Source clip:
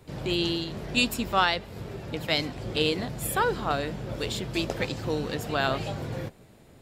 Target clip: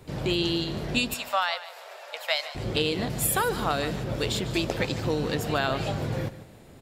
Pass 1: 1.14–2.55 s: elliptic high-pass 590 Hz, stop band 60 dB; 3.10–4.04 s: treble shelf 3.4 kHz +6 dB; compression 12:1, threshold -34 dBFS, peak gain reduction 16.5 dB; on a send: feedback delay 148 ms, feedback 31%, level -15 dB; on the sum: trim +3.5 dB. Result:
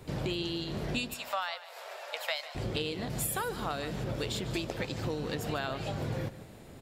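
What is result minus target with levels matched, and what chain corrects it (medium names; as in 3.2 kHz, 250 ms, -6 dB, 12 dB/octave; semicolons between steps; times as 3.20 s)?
compression: peak gain reduction +8.5 dB
1.14–2.55 s: elliptic high-pass 590 Hz, stop band 60 dB; 3.10–4.04 s: treble shelf 3.4 kHz +6 dB; compression 12:1, threshold -24.5 dBFS, peak gain reduction 7.5 dB; on a send: feedback delay 148 ms, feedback 31%, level -15 dB; on the sum: trim +3.5 dB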